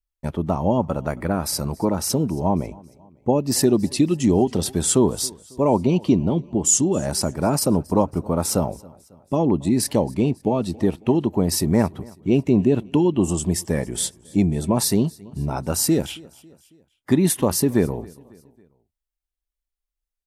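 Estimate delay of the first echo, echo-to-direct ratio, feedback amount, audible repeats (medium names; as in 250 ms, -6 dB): 274 ms, -23.0 dB, 50%, 2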